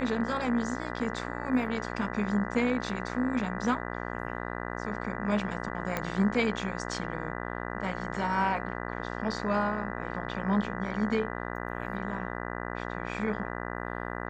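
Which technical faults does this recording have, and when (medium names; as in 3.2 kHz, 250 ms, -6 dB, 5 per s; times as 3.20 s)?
buzz 60 Hz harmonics 33 -36 dBFS
5.97 s: pop -15 dBFS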